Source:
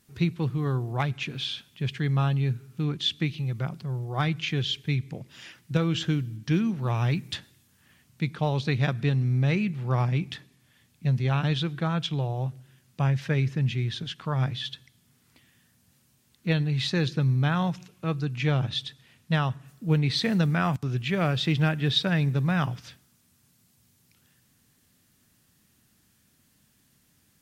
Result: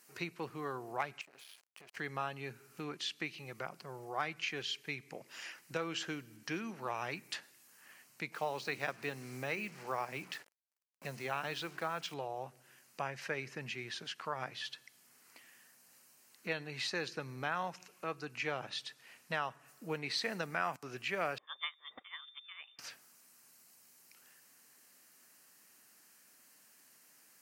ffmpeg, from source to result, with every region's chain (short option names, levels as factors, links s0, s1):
-filter_complex "[0:a]asettb=1/sr,asplit=3[s0][s1][s2];[s0]atrim=end=1.214[s3];[s1]atrim=start=1.21:end=1.97,asetpts=PTS-STARTPTS,afade=t=in:d=0.004:c=qsin,afade=t=out:st=0.756:d=0.004:c=qsin,acompressor=threshold=0.00631:ratio=8:attack=3.2:release=140:knee=1:detection=peak,aeval=exprs='sgn(val(0))*max(abs(val(0))-0.00335,0)':c=same[s4];[s2]atrim=start=1.966[s5];[s3][s4]acrossfade=d=0.004:c1=hsin:c2=qsin[s6];[s6][s5]acrossfade=d=0.004:c1=qsin:c2=hsin,asettb=1/sr,asplit=3[s7][s8][s9];[s7]atrim=end=8.324[s10];[s8]atrim=start=8.32:end=12.14,asetpts=PTS-STARTPTS,afade=t=in:d=0.004:c=qsin,afade=t=out:st=3.816:d=0.004:c=qsin,highpass=68,bandreject=f=60:t=h:w=6,bandreject=f=120:t=h:w=6,bandreject=f=180:t=h:w=6,bandreject=f=240:t=h:w=6,bandreject=f=300:t=h:w=6,bandreject=f=360:t=h:w=6,acrusher=bits=7:mix=0:aa=0.5[s11];[s9]atrim=start=12.136[s12];[s10][s11]acrossfade=d=0.004:c1=hsin:c2=qsin[s13];[s13][s12]acrossfade=d=0.004:c1=qsin:c2=hsin,asettb=1/sr,asplit=3[s14][s15][s16];[s14]atrim=end=21.384[s17];[s15]atrim=start=21.38:end=22.79,asetpts=PTS-STARTPTS,afade=t=in:d=0.004:c=qsin,afade=t=out:st=1.406:d=0.004:c=qsin,agate=range=0.0562:threshold=0.0891:ratio=16:release=100:detection=peak,lowpass=f=3100:t=q:w=0.5098,lowpass=f=3100:t=q:w=0.6013,lowpass=f=3100:t=q:w=0.9,lowpass=f=3100:t=q:w=2.563,afreqshift=-3700[s18];[s16]atrim=start=22.786[s19];[s17][s18]acrossfade=d=0.004:c1=hsin:c2=qsin[s20];[s20][s19]acrossfade=d=0.004:c1=qsin:c2=hsin,highpass=520,equalizer=f=3500:w=4.8:g=-12,acompressor=threshold=0.00224:ratio=1.5,volume=1.58"